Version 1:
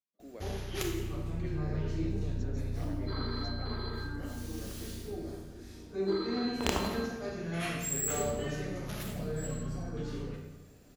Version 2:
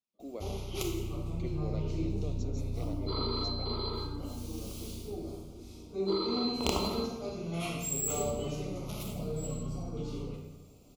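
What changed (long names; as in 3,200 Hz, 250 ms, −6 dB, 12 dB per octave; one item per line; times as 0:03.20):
speech +6.0 dB
second sound +6.5 dB
master: add Butterworth band-reject 1,700 Hz, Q 1.7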